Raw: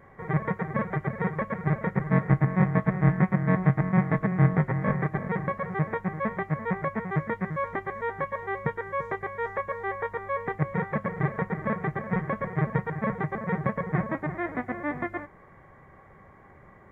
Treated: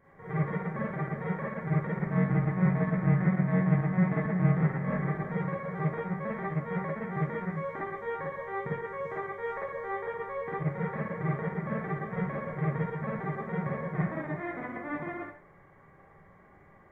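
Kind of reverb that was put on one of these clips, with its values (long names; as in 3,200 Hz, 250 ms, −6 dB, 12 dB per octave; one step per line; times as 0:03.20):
four-comb reverb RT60 0.4 s, DRR −6 dB
level −11 dB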